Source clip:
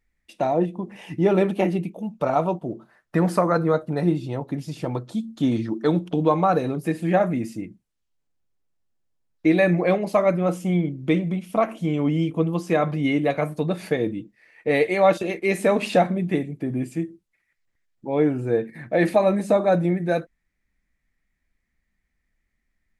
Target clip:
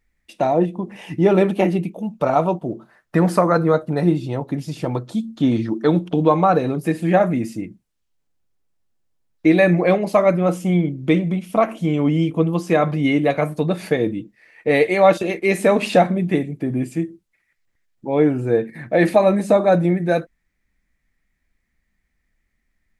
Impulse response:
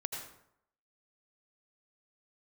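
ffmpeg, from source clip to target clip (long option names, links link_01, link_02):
-filter_complex "[0:a]asettb=1/sr,asplit=3[link_01][link_02][link_03];[link_01]atrim=end=5.364[link_04];[link_02]atrim=start=5.36:end=6.81,asetpts=PTS-STARTPTS,afade=type=in:duration=0.004:curve=qsin,afade=type=out:start_time=1.446:duration=0.004:curve=qsin,acrossover=split=5100[link_05][link_06];[link_06]acompressor=threshold=-60dB:ratio=4:attack=1:release=60[link_07];[link_05][link_07]amix=inputs=2:normalize=0[link_08];[link_03]atrim=start=6.806[link_09];[link_04][link_08]acrossfade=duration=0.004:curve1=hsin:curve2=qsin[link_10];[link_10][link_09]acrossfade=duration=0.004:curve1=qsin:curve2=hsin,volume=4dB"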